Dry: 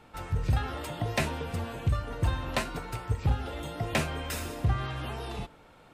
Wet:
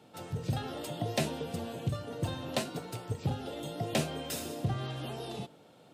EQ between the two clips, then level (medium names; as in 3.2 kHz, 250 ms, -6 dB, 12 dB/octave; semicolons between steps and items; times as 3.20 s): high-pass 120 Hz 24 dB/octave; high-order bell 1.5 kHz -8.5 dB; 0.0 dB